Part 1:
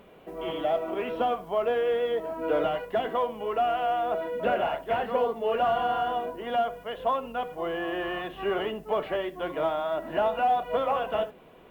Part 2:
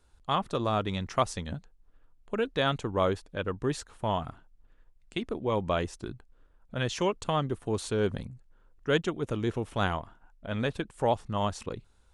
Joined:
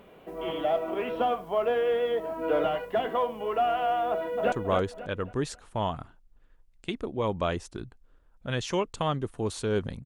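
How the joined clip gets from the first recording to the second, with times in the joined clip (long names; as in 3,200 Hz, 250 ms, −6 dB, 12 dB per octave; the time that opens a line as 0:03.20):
part 1
0:04.10–0:04.52: delay throw 270 ms, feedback 35%, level −6 dB
0:04.52: continue with part 2 from 0:02.80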